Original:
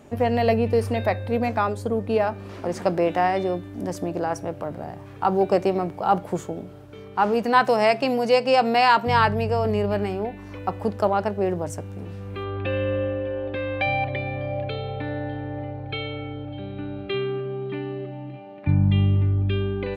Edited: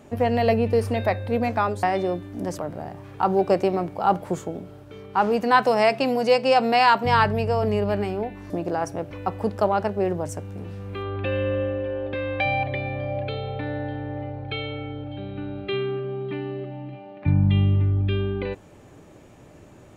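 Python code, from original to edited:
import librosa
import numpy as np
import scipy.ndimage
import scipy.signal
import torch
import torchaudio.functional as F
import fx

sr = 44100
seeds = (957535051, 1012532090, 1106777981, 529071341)

y = fx.edit(x, sr, fx.cut(start_s=1.83, length_s=1.41),
    fx.move(start_s=3.99, length_s=0.61, to_s=10.52), tone=tone)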